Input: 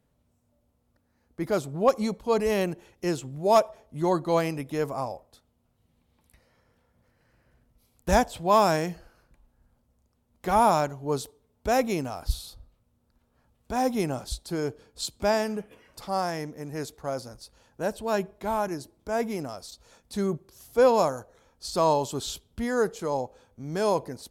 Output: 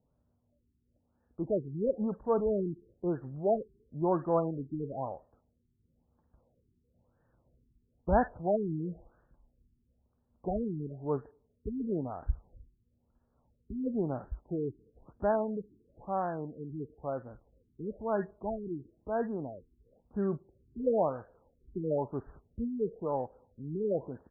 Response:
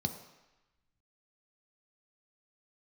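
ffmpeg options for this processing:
-filter_complex "[0:a]acrossover=split=1700[link_01][link_02];[link_02]adelay=50[link_03];[link_01][link_03]amix=inputs=2:normalize=0,adynamicsmooth=sensitivity=7:basefreq=4100,afftfilt=real='re*lt(b*sr/1024,410*pow(1900/410,0.5+0.5*sin(2*PI*1*pts/sr)))':imag='im*lt(b*sr/1024,410*pow(1900/410,0.5+0.5*sin(2*PI*1*pts/sr)))':win_size=1024:overlap=0.75,volume=-4dB"

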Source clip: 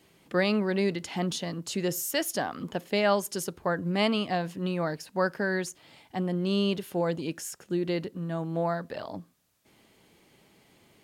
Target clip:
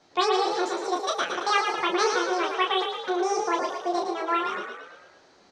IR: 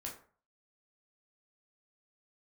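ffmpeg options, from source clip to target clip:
-filter_complex "[0:a]asplit=2[link_01][link_02];[link_02]aecho=0:1:22|69:0.631|0.631[link_03];[link_01][link_03]amix=inputs=2:normalize=0,asetrate=88200,aresample=44100,lowpass=frequency=5800:width=0.5412,lowpass=frequency=5800:width=1.3066,asplit=2[link_04][link_05];[link_05]asplit=7[link_06][link_07][link_08][link_09][link_10][link_11][link_12];[link_06]adelay=112,afreqshift=40,volume=-6dB[link_13];[link_07]adelay=224,afreqshift=80,volume=-11dB[link_14];[link_08]adelay=336,afreqshift=120,volume=-16.1dB[link_15];[link_09]adelay=448,afreqshift=160,volume=-21.1dB[link_16];[link_10]adelay=560,afreqshift=200,volume=-26.1dB[link_17];[link_11]adelay=672,afreqshift=240,volume=-31.2dB[link_18];[link_12]adelay=784,afreqshift=280,volume=-36.2dB[link_19];[link_13][link_14][link_15][link_16][link_17][link_18][link_19]amix=inputs=7:normalize=0[link_20];[link_04][link_20]amix=inputs=2:normalize=0"

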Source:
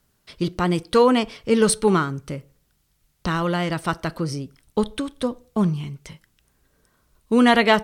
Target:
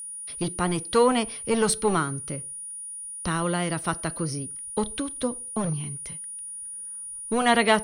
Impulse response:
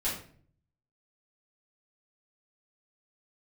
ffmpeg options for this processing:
-filter_complex "[0:a]acrossover=split=360|1300|2400[link_01][link_02][link_03][link_04];[link_01]aeval=exprs='0.1*(abs(mod(val(0)/0.1+3,4)-2)-1)':channel_layout=same[link_05];[link_05][link_02][link_03][link_04]amix=inputs=4:normalize=0,aeval=exprs='val(0)+0.0282*sin(2*PI*9600*n/s)':channel_layout=same,volume=-3.5dB"

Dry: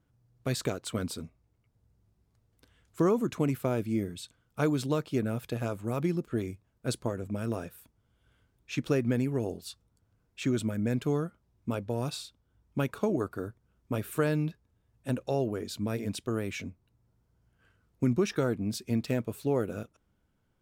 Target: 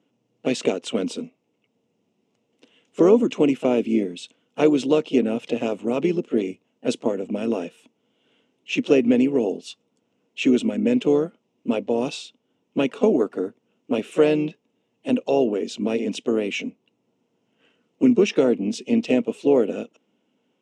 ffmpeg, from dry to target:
ffmpeg -i in.wav -filter_complex "[0:a]asplit=2[link_01][link_02];[link_02]asetrate=52444,aresample=44100,atempo=0.840896,volume=-12dB[link_03];[link_01][link_03]amix=inputs=2:normalize=0,highpass=frequency=210:width=0.5412,highpass=frequency=210:width=1.3066,equalizer=frequency=250:width_type=q:width=4:gain=5,equalizer=frequency=460:width_type=q:width=4:gain=5,equalizer=frequency=1200:width_type=q:width=4:gain=-6,equalizer=frequency=1600:width_type=q:width=4:gain=-10,equalizer=frequency=2800:width_type=q:width=4:gain=9,equalizer=frequency=4500:width_type=q:width=4:gain=-8,lowpass=frequency=7000:width=0.5412,lowpass=frequency=7000:width=1.3066,volume=8dB" out.wav

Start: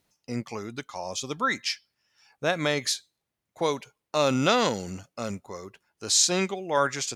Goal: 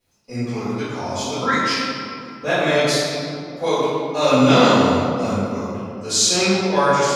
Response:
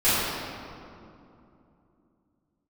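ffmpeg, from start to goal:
-filter_complex "[1:a]atrim=start_sample=2205[link_01];[0:a][link_01]afir=irnorm=-1:irlink=0,volume=-9.5dB"

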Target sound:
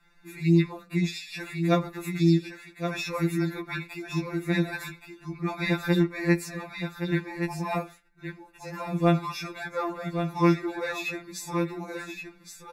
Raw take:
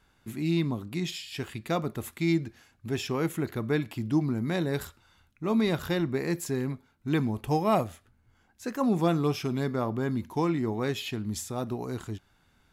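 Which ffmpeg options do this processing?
ffmpeg -i in.wav -filter_complex "[0:a]asuperstop=centerf=3100:order=12:qfactor=5.6,lowshelf=frequency=76:gain=11,asettb=1/sr,asplit=3[link_01][link_02][link_03];[link_01]atrim=end=6.544[link_04];[link_02]atrim=start=6.54:end=9.12,asetpts=PTS-STARTPTS,afade=type=in:duration=0.004:curve=qsin,afade=type=out:start_time=2.576:duration=0.004:curve=qsin,flanger=delay=0:depth=9.7:regen=-72:speed=1.2:shape=sinusoidal[link_05];[link_03]atrim=start=9.116[link_06];[link_04][link_05]acrossfade=duration=0.004:curve1=hsin:curve2=qsin[link_07];[link_07][link_06]acrossfade=duration=0.004:curve1=qsin:curve2=hsin,equalizer=frequency=2100:width=0.89:gain=9.5,aecho=1:1:1120:0.422,afftfilt=real='re*2.83*eq(mod(b,8),0)':imag='im*2.83*eq(mod(b,8),0)':win_size=2048:overlap=0.75" out.wav

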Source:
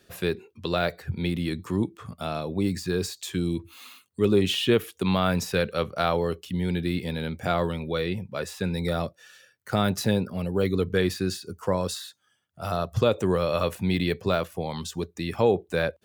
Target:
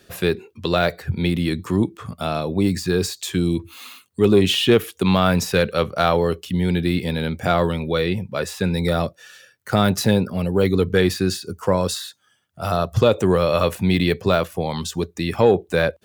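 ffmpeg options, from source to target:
ffmpeg -i in.wav -af "acontrast=76" out.wav

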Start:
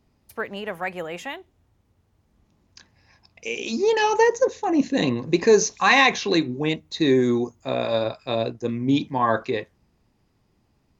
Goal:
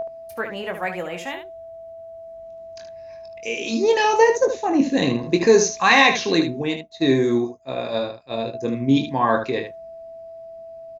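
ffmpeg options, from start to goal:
ffmpeg -i in.wav -filter_complex "[0:a]aeval=exprs='val(0)+0.0631*sin(2*PI*660*n/s)':channel_layout=same,asplit=3[link_01][link_02][link_03];[link_01]afade=type=out:start_time=6.61:duration=0.02[link_04];[link_02]agate=range=-33dB:threshold=-17dB:ratio=3:detection=peak,afade=type=in:start_time=6.61:duration=0.02,afade=type=out:start_time=8.53:duration=0.02[link_05];[link_03]afade=type=in:start_time=8.53:duration=0.02[link_06];[link_04][link_05][link_06]amix=inputs=3:normalize=0,aecho=1:1:22|75:0.398|0.376,volume=1dB" out.wav

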